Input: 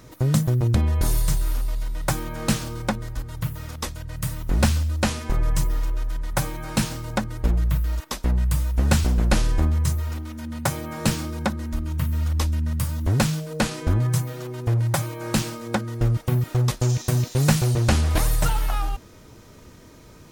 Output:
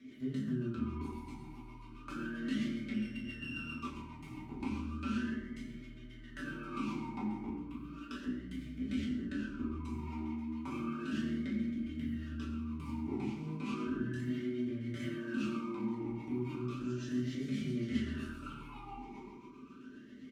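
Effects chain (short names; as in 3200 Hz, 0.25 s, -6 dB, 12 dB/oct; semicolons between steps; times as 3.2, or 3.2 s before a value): 2.93–3.79 sample sorter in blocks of 16 samples; comb 5.1 ms, depth 87%; transient shaper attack -11 dB, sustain +7 dB; compressor, threshold -25 dBFS, peak gain reduction 12 dB; rotary speaker horn 7.5 Hz; reverb RT60 1.2 s, pre-delay 6 ms, DRR -5.5 dB; vowel sweep i-u 0.34 Hz; gain +1 dB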